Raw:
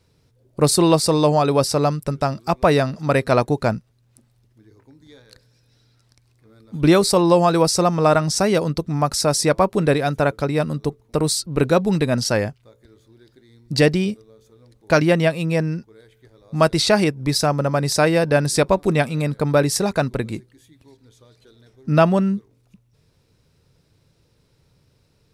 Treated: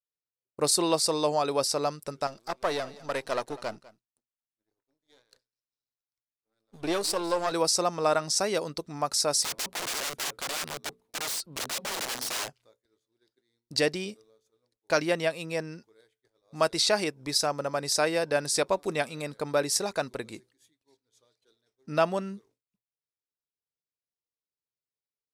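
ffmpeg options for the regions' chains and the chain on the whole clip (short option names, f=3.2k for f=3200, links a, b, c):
-filter_complex "[0:a]asettb=1/sr,asplit=3[a][b][c];[a]atrim=end=2.274[d];[b]atrim=start=2.27:end=7.52,asetpts=PTS-STARTPTS,afade=t=in:d=0.004:c=qsin,afade=t=out:st=5.246:d=0.004:c=qsin,aeval=exprs='if(lt(val(0),0),0.251*val(0),val(0))':c=same,aecho=1:1:200:0.106,atrim=end_sample=231525[e];[c]atrim=start=7.516[f];[d][e]acrossfade=d=0.004:c1=hsin:c2=qsin[g];[g][f]acrossfade=d=0.004:c1=qsin:c2=hsin,asettb=1/sr,asplit=3[h][i][j];[h]atrim=end=9.424[k];[i]atrim=start=9.42:end=12.48,asetpts=PTS-STARTPTS,afade=t=in:d=0.004:c=qsin,afade=t=out:st=3.056:d=0.004:c=qsin,equalizer=f=6.1k:t=o:w=0.85:g=-6,bandreject=f=60:t=h:w=6,bandreject=f=120:t=h:w=6,bandreject=f=180:t=h:w=6,bandreject=f=240:t=h:w=6,aeval=exprs='(mod(10.6*val(0)+1,2)-1)/10.6':c=same[l];[j]atrim=start=12.476[m];[k][l]acrossfade=d=0.004:c1=hsin:c2=qsin[n];[n][m]acrossfade=d=0.004:c1=qsin:c2=hsin,bass=f=250:g=-14,treble=f=4k:g=9,agate=range=-33dB:threshold=-45dB:ratio=3:detection=peak,highshelf=f=9.3k:g=-10.5,volume=-8dB"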